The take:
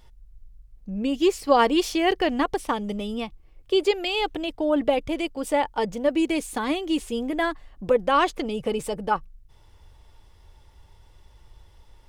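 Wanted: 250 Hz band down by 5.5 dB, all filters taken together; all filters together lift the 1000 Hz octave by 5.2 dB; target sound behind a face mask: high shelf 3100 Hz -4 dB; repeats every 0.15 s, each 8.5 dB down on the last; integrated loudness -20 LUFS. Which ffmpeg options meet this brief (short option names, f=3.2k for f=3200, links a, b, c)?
-af "equalizer=f=250:t=o:g=-8.5,equalizer=f=1k:t=o:g=7.5,highshelf=f=3.1k:g=-4,aecho=1:1:150|300|450|600:0.376|0.143|0.0543|0.0206,volume=3dB"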